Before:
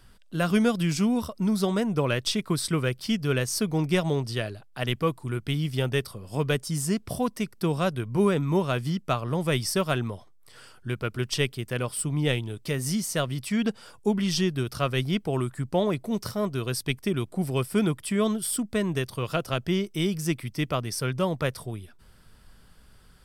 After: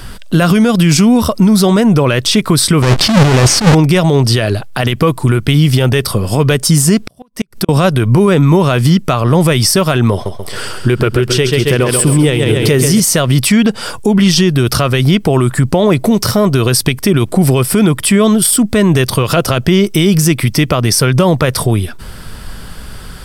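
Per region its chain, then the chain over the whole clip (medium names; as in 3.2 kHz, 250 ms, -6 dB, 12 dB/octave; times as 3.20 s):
2.82–3.75 s: square wave that keeps the level + Bessel low-pass 6.7 kHz + compressor with a negative ratio -30 dBFS
6.98–7.69 s: compression 2.5:1, threshold -42 dBFS + inverted gate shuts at -30 dBFS, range -38 dB
10.12–13.00 s: peaking EQ 390 Hz +7 dB 0.45 oct + feedback delay 135 ms, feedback 49%, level -8 dB
whole clip: compression, threshold -27 dBFS; loudness maximiser +27 dB; trim -1 dB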